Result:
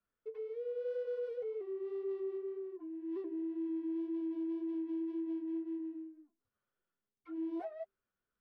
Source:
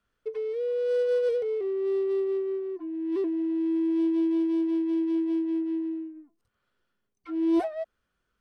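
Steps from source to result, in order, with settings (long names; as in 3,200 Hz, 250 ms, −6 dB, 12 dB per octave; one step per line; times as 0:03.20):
low-pass filter 1,700 Hz 6 dB per octave
low-shelf EQ 110 Hz −7 dB
hum removal 130.5 Hz, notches 3
brickwall limiter −24 dBFS, peak gain reduction 7 dB
flanger 1.9 Hz, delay 4.9 ms, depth 5.2 ms, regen −37%
level −6.5 dB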